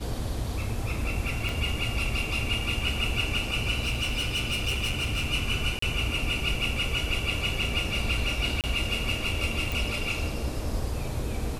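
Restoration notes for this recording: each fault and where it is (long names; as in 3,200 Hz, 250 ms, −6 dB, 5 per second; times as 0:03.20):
0:01.49: click
0:03.82–0:05.29: clipping −23.5 dBFS
0:05.79–0:05.82: drop-out 34 ms
0:08.61–0:08.64: drop-out 28 ms
0:09.72: click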